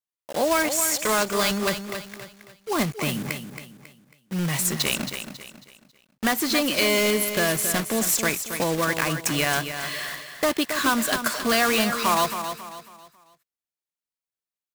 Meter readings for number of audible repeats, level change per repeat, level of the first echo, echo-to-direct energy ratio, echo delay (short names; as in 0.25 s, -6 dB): 3, -9.0 dB, -9.0 dB, -8.5 dB, 0.273 s